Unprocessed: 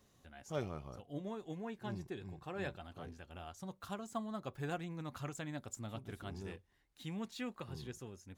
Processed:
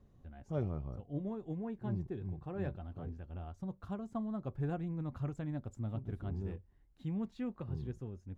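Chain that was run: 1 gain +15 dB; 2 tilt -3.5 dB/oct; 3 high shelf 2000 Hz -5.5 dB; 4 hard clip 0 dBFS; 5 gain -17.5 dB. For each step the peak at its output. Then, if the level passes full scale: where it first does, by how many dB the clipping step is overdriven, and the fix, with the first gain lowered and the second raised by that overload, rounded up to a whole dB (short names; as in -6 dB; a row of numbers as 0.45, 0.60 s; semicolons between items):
-10.0, -4.0, -4.5, -4.5, -22.0 dBFS; no overload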